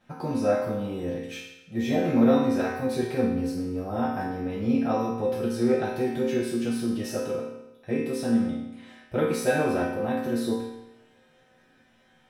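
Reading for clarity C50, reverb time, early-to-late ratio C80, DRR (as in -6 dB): 1.0 dB, 0.95 s, 4.0 dB, -9.5 dB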